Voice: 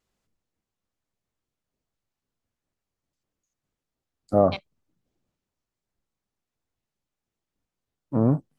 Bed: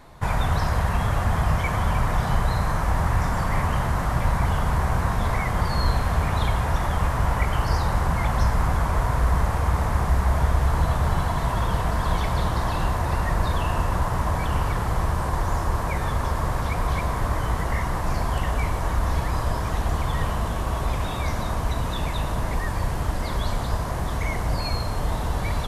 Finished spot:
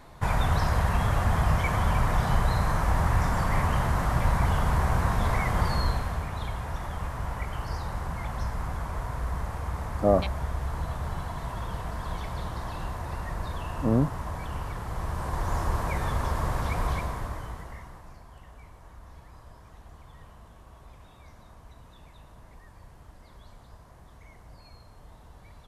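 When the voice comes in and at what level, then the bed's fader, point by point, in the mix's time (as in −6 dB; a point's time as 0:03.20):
5.70 s, −2.5 dB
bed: 0:05.68 −2 dB
0:06.29 −10.5 dB
0:14.84 −10.5 dB
0:15.60 −3.5 dB
0:16.87 −3.5 dB
0:18.22 −25 dB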